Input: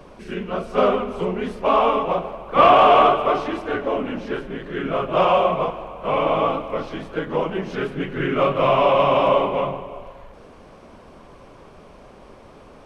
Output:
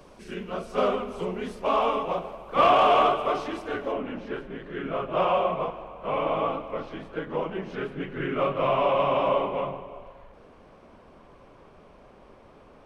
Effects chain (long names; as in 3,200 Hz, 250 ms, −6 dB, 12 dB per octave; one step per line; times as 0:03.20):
bass and treble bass −1 dB, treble +7 dB, from 0:03.91 treble −6 dB
level −6.5 dB